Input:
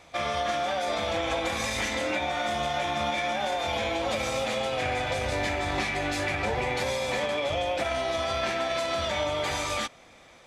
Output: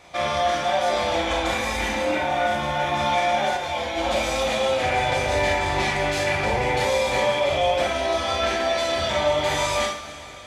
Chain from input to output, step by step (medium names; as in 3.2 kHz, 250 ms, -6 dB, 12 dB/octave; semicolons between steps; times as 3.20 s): 1.54–2.94 s: peaking EQ 6.3 kHz -6 dB 1.9 oct; reverberation, pre-delay 29 ms, DRR -1 dB; 3.56–3.96 s: detune thickener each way 22 cents -> 10 cents; trim +2 dB